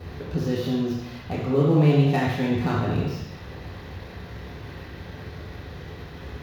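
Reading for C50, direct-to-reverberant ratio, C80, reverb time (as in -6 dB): 0.5 dB, -5.5 dB, 3.0 dB, 1.0 s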